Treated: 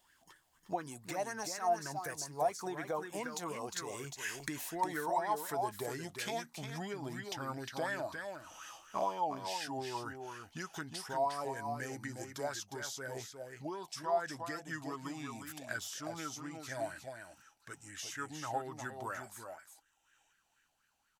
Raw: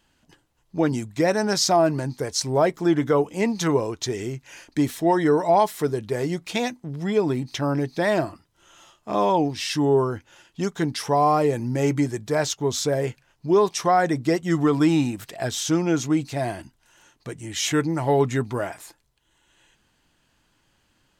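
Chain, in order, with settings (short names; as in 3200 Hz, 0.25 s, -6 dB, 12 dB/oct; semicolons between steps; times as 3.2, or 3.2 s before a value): Doppler pass-by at 5.22, 23 m/s, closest 25 m; pre-emphasis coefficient 0.8; compressor 6:1, threshold -56 dBFS, peak gain reduction 26 dB; on a send: echo 0.357 s -6.5 dB; on the sum: LFO bell 4.1 Hz 690–1700 Hz +18 dB; gain +13.5 dB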